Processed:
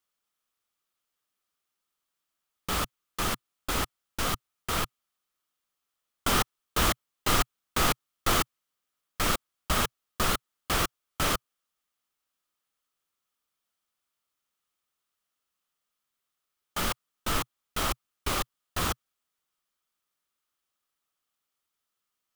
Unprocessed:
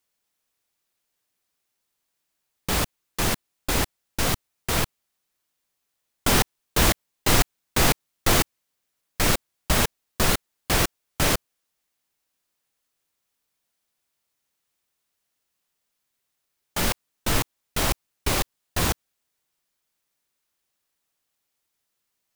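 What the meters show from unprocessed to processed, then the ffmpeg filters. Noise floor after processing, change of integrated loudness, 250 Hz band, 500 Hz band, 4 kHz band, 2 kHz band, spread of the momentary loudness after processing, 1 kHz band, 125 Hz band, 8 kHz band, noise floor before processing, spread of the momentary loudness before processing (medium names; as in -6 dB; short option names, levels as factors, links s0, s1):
-84 dBFS, -5.0 dB, -6.5 dB, -6.5 dB, -4.5 dB, -5.0 dB, 9 LU, -2.0 dB, -8.0 dB, -6.5 dB, -79 dBFS, 9 LU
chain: -af "equalizer=f=125:t=o:w=0.33:g=-5,equalizer=f=1250:t=o:w=0.33:g=10,equalizer=f=3150:t=o:w=0.33:g=4,volume=0.473"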